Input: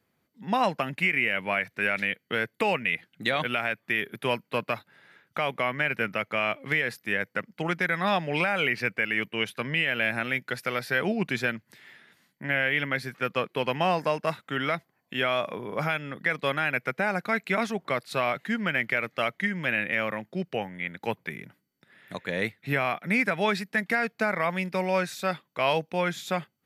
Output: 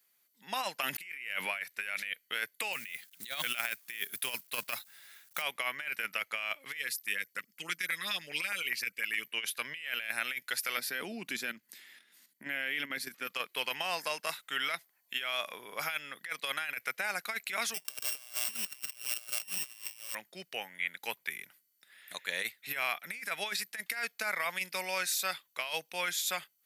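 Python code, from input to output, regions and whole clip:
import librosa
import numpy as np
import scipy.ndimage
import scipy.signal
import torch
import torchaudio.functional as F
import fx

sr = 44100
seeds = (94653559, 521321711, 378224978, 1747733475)

y = fx.chain(x, sr, fx.highpass(hz=120.0, slope=12),
    fx.pre_swell(db_per_s=23.0), at=(0.83, 1.58))
y = fx.chain(y, sr, fx.bass_treble(bass_db=7, treble_db=6),
    fx.quant_companded(bits=6), at=(2.73, 5.42))
y = fx.chain(y, sr, fx.peak_eq(hz=760.0, db=-12.5, octaves=0.88),
    fx.notch(hz=1500.0, q=26.0),
    fx.filter_lfo_notch(shape='saw_up', hz=9.7, low_hz=440.0, high_hz=4700.0, q=0.82), at=(6.77, 9.27))
y = fx.chain(y, sr, fx.level_steps(step_db=11),
    fx.peak_eq(hz=250.0, db=14.0, octaves=1.5), at=(10.77, 13.27))
y = fx.chain(y, sr, fx.sample_sort(block=16),
    fx.echo_feedback(ms=141, feedback_pct=32, wet_db=-11.5), at=(17.74, 20.15))
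y = np.diff(y, prepend=0.0)
y = fx.over_compress(y, sr, threshold_db=-41.0, ratio=-0.5)
y = y * 10.0 ** (6.0 / 20.0)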